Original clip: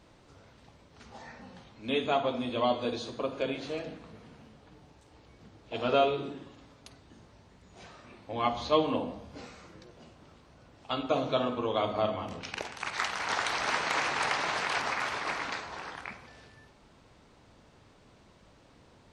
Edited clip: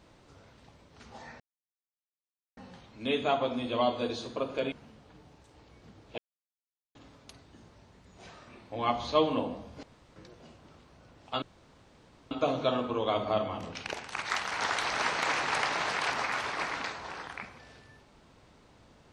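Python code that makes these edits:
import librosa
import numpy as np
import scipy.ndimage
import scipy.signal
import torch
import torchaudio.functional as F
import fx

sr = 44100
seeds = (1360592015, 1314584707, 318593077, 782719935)

y = fx.edit(x, sr, fx.insert_silence(at_s=1.4, length_s=1.17),
    fx.cut(start_s=3.55, length_s=0.74),
    fx.silence(start_s=5.75, length_s=0.77),
    fx.room_tone_fill(start_s=9.4, length_s=0.33),
    fx.insert_room_tone(at_s=10.99, length_s=0.89), tone=tone)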